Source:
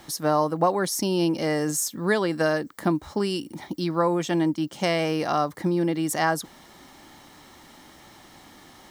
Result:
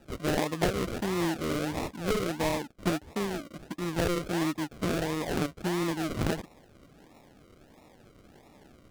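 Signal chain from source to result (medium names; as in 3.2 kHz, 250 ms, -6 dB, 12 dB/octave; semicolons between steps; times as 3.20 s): decimation with a swept rate 40×, swing 60% 1.5 Hz; loudspeaker Doppler distortion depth 0.61 ms; trim -6 dB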